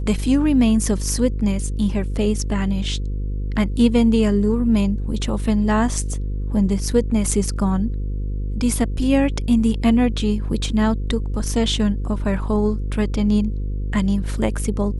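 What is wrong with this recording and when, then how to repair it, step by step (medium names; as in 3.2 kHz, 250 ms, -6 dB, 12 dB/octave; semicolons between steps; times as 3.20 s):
buzz 50 Hz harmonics 10 -24 dBFS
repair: de-hum 50 Hz, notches 10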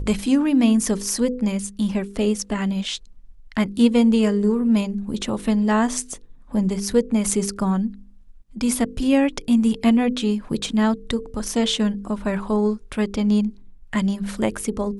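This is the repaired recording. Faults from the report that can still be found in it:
nothing left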